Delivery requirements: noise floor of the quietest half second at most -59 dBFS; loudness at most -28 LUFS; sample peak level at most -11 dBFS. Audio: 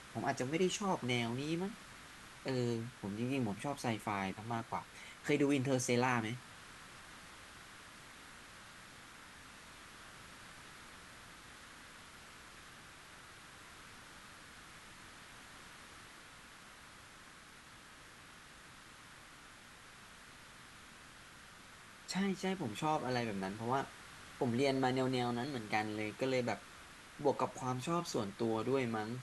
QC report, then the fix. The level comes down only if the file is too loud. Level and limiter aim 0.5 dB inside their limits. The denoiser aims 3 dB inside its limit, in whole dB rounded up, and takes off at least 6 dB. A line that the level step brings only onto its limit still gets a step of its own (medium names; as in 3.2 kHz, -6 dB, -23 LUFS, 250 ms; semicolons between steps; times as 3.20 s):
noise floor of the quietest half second -57 dBFS: fail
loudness -37.0 LUFS: pass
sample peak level -19.0 dBFS: pass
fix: noise reduction 6 dB, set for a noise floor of -57 dBFS